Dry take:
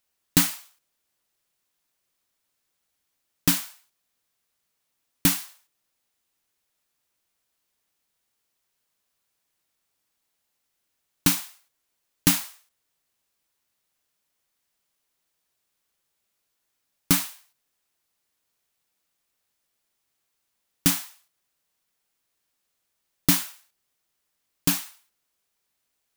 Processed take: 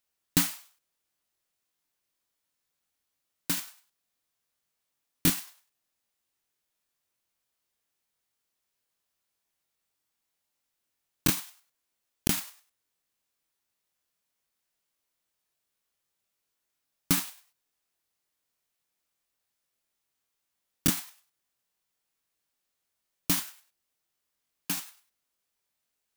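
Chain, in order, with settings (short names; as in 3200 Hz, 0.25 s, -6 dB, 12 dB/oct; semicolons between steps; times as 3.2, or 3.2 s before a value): crackling interface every 0.10 s, samples 1024, repeat, from 0.85; gain -5 dB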